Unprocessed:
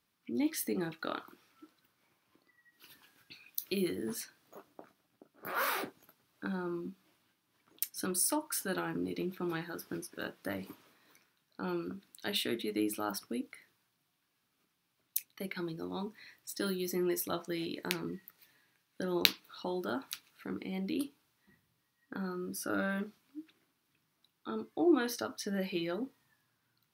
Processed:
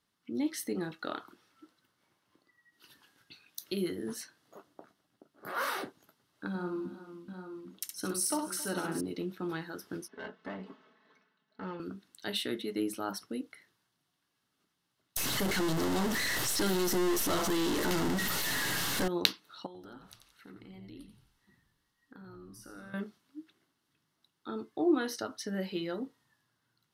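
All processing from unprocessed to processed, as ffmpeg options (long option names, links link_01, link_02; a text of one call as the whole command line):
ffmpeg -i in.wav -filter_complex "[0:a]asettb=1/sr,asplit=3[link_01][link_02][link_03];[link_01]atrim=end=6.484[link_04];[link_02]atrim=start=6.48:end=9.01,asetpts=PTS-STARTPTS,afade=type=in:duration=0.004:curve=qsin,afade=type=out:start_time=2.526:duration=0.004:curve=qsin,bandreject=frequency=1700:width=16,aecho=1:1:67|270|394|435|800|849:0.531|0.126|0.141|0.2|0.355|0.211,atrim=end_sample=111573[link_05];[link_03]atrim=start=9.006[link_06];[link_04][link_05]acrossfade=duration=0.004:curve1=hsin:curve2=qsin[link_07];[link_07][link_06]acrossfade=duration=0.004:curve1=qsin:curve2=hsin,asettb=1/sr,asplit=3[link_08][link_09][link_10];[link_08]atrim=end=10.084[link_11];[link_09]atrim=start=10.08:end=11.8,asetpts=PTS-STARTPTS,afade=type=in:duration=0.004:curve=qsin,afade=type=out:start_time=1.716:duration=0.004:curve=qsin,aecho=1:1:4.6:0.82,atrim=end_sample=75852,aeval=exprs='clip(val(0),-1,0.00562)':channel_layout=same,highpass=150,lowpass=2700[link_12];[link_10]atrim=start=11.796[link_13];[link_11][link_12]acrossfade=duration=0.004:curve1=hsin:curve2=qsin[link_14];[link_14][link_13]acrossfade=duration=0.004:curve1=qsin:curve2=hsin,asettb=1/sr,asplit=3[link_15][link_16][link_17];[link_15]atrim=end=15.174[link_18];[link_16]atrim=start=15.17:end=19.08,asetpts=PTS-STARTPTS,afade=type=in:duration=0.004:curve=qsin,afade=type=out:start_time=3.906:duration=0.004:curve=qsin,aeval=exprs='val(0)+0.5*0.075*sgn(val(0))':channel_layout=same,equalizer=frequency=14000:width=4.6:gain=10.5,aeval=exprs='(tanh(15.8*val(0)+0.6)-tanh(0.6))/15.8':channel_layout=same[link_19];[link_17]atrim=start=19.076[link_20];[link_18][link_19]acrossfade=duration=0.004:curve1=hsin:curve2=qsin[link_21];[link_21][link_20]acrossfade=duration=0.004:curve1=qsin:curve2=hsin,asettb=1/sr,asplit=3[link_22][link_23][link_24];[link_22]atrim=end=19.664[link_25];[link_23]atrim=start=19.66:end=22.94,asetpts=PTS-STARTPTS,afade=type=in:duration=0.004:curve=qsin,afade=type=out:start_time=3.276:duration=0.004:curve=qsin,bandreject=frequency=630:width=5.4,acompressor=threshold=-54dB:ratio=2.5:attack=3.2:release=140:knee=1:detection=peak,asplit=6[link_26][link_27][link_28][link_29][link_30][link_31];[link_27]adelay=87,afreqshift=-77,volume=-7.5dB[link_32];[link_28]adelay=174,afreqshift=-154,volume=-14.4dB[link_33];[link_29]adelay=261,afreqshift=-231,volume=-21.4dB[link_34];[link_30]adelay=348,afreqshift=-308,volume=-28.3dB[link_35];[link_31]adelay=435,afreqshift=-385,volume=-35.2dB[link_36];[link_26][link_32][link_33][link_34][link_35][link_36]amix=inputs=6:normalize=0,atrim=end_sample=144648[link_37];[link_24]atrim=start=22.936[link_38];[link_25][link_37]acrossfade=duration=0.004:curve1=hsin:curve2=qsin[link_39];[link_39][link_38]acrossfade=duration=0.004:curve1=qsin:curve2=hsin,lowpass=11000,bandreject=frequency=2400:width=7.2" out.wav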